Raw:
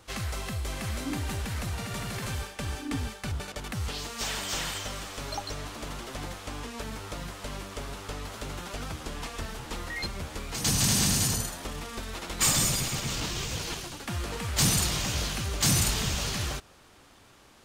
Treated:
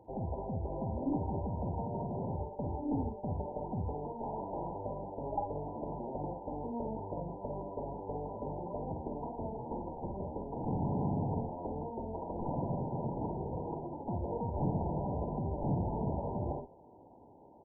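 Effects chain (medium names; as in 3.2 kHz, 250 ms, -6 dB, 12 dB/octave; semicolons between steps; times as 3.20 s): high-pass 210 Hz 6 dB/octave; valve stage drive 27 dB, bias 0.5; brick-wall FIR low-pass 1 kHz; early reflections 47 ms -7 dB, 59 ms -7 dB; trim +4.5 dB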